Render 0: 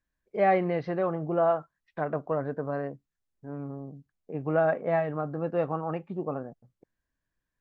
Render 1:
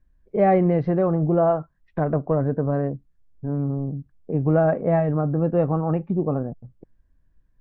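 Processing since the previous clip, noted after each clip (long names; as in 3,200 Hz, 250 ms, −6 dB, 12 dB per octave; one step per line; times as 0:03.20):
spectral tilt −4 dB per octave
in parallel at 0 dB: downward compressor, threshold −30 dBFS, peak gain reduction 14 dB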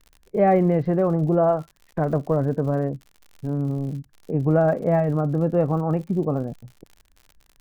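surface crackle 78 per second −37 dBFS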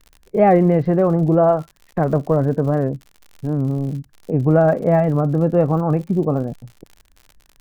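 wow of a warped record 78 rpm, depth 100 cents
level +4.5 dB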